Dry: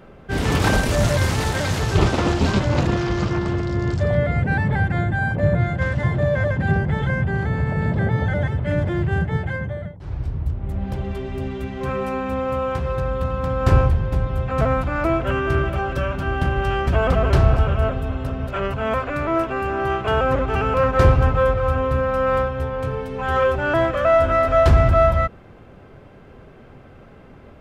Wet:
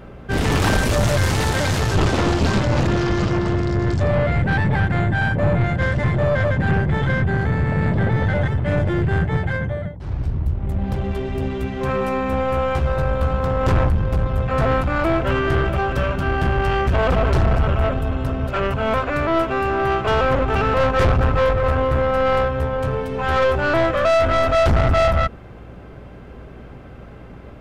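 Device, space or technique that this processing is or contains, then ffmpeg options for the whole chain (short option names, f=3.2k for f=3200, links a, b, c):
valve amplifier with mains hum: -filter_complex "[0:a]aeval=exprs='(tanh(7.94*val(0)+0.35)-tanh(0.35))/7.94':c=same,aeval=exprs='val(0)+0.00501*(sin(2*PI*60*n/s)+sin(2*PI*2*60*n/s)/2+sin(2*PI*3*60*n/s)/3+sin(2*PI*4*60*n/s)/4+sin(2*PI*5*60*n/s)/5)':c=same,asettb=1/sr,asplit=3[a][b][c];[a]atrim=end=12.324[d];[b]atrim=start=12.32:end=13.4,asetpts=PTS-STARTPTS,afade=t=in:d=0.004:c=qsin,afade=t=out:st=1.076:d=0.004:c=qsin,asplit=2[e][f];[f]adelay=14,volume=-6dB[g];[e][g]amix=inputs=2:normalize=0,atrim=end_sample=47628[h];[c]atrim=start=13.396[i];[d][h]acrossfade=d=0.004:c1=hsin:c2=qsin[j];[j][i]acrossfade=d=0.004:c1=qsin:c2=hsin,volume=5dB"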